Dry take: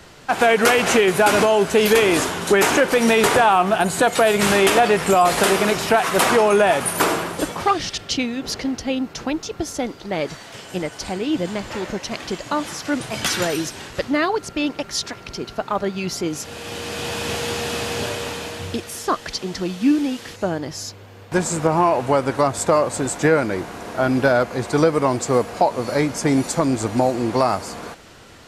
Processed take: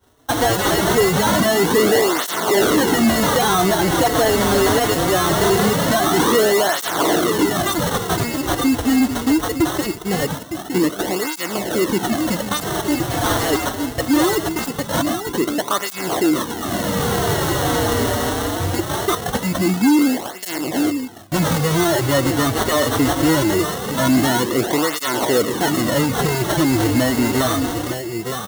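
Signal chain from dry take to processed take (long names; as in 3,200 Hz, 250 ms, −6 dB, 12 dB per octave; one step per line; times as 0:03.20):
downward expander −31 dBFS
parametric band 760 Hz −10.5 dB 0.66 octaves
on a send: single-tap delay 911 ms −13.5 dB
on the sum: sample-rate reduction 2,400 Hz, jitter 0%
high-shelf EQ 4,700 Hz +8.5 dB
hollow resonant body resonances 320/710 Hz, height 6 dB
in parallel at −1 dB: brickwall limiter −10 dBFS, peak gain reduction 10 dB
on the sum: soft clipping −17 dBFS, distortion −7 dB
through-zero flanger with one copy inverted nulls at 0.22 Hz, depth 6.1 ms
level +6.5 dB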